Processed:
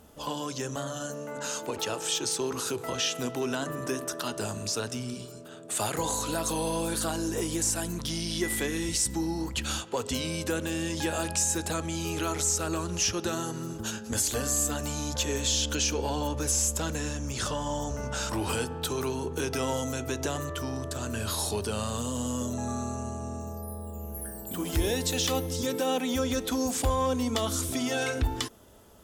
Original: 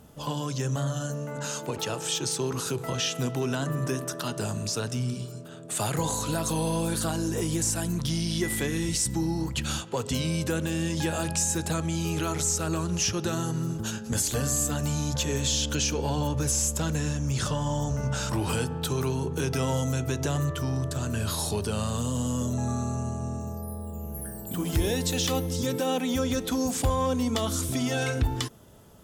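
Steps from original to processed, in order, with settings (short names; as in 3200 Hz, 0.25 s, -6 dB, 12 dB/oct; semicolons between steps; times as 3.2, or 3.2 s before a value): bell 140 Hz -12.5 dB 0.72 oct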